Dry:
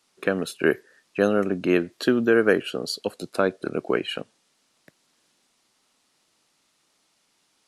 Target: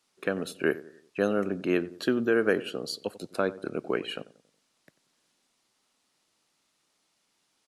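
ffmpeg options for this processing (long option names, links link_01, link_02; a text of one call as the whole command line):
ffmpeg -i in.wav -filter_complex "[0:a]asplit=2[link_01][link_02];[link_02]adelay=92,lowpass=frequency=1100:poles=1,volume=-16dB,asplit=2[link_03][link_04];[link_04]adelay=92,lowpass=frequency=1100:poles=1,volume=0.47,asplit=2[link_05][link_06];[link_06]adelay=92,lowpass=frequency=1100:poles=1,volume=0.47,asplit=2[link_07][link_08];[link_08]adelay=92,lowpass=frequency=1100:poles=1,volume=0.47[link_09];[link_01][link_03][link_05][link_07][link_09]amix=inputs=5:normalize=0,volume=-5.5dB" out.wav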